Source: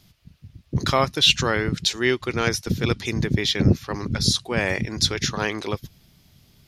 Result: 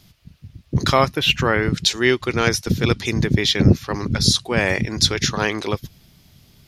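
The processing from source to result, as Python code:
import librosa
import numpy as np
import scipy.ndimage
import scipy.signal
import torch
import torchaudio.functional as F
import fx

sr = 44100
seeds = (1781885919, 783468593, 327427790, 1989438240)

y = fx.band_shelf(x, sr, hz=5700.0, db=-11.5, octaves=1.7, at=(1.13, 1.63))
y = y * 10.0 ** (4.0 / 20.0)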